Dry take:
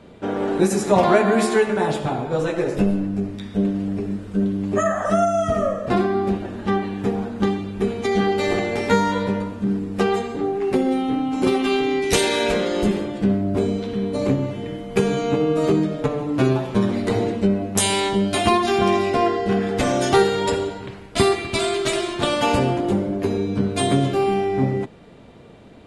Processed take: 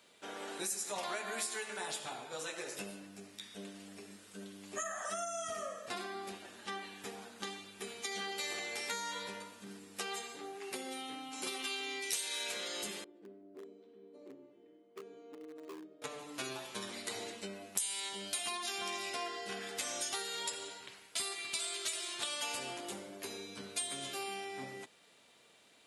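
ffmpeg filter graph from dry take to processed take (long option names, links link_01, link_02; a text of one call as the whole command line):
ffmpeg -i in.wav -filter_complex "[0:a]asettb=1/sr,asplit=3[link_01][link_02][link_03];[link_01]atrim=end=13.044[link_04];[link_02]atrim=start=13.04:end=16.02,asetpts=PTS-STARTPTS,afade=type=in:duration=0.004:curve=qsin,afade=type=out:start_time=2.976:duration=0.004:curve=qsin,bandpass=frequency=350:width_type=q:width=3.8,volume=19dB,asoftclip=hard,volume=-19dB[link_05];[link_03]atrim=start=16.016[link_06];[link_04][link_05]acrossfade=duration=0.004:curve1=hsin:curve2=qsin[link_07];[link_07][link_06]acrossfade=duration=0.004:curve1=qsin:curve2=hsin,aderivative,acompressor=threshold=-37dB:ratio=4,volume=1dB" out.wav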